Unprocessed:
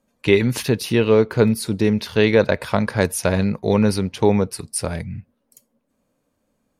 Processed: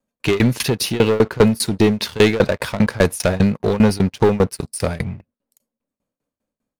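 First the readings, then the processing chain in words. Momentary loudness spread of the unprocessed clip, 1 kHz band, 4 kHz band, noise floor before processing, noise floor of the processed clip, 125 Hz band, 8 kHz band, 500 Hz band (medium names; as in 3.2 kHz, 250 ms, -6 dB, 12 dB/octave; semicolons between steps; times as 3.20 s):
9 LU, +2.0 dB, +4.0 dB, -71 dBFS, under -85 dBFS, +2.0 dB, +1.5 dB, +0.5 dB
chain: waveshaping leveller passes 3; vibrato 0.31 Hz 6.1 cents; tremolo saw down 5 Hz, depth 95%; trim -2 dB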